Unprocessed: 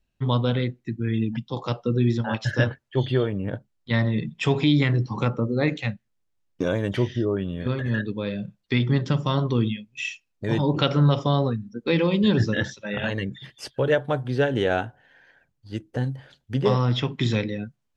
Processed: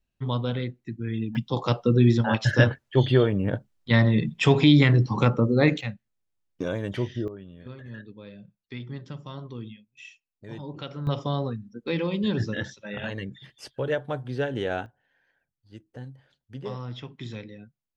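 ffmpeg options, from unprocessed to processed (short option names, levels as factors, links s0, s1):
-af "asetnsamples=n=441:p=0,asendcmd='1.35 volume volume 3dB;5.81 volume volume -5dB;7.28 volume volume -15.5dB;11.07 volume volume -6dB;14.86 volume volume -14dB',volume=0.562"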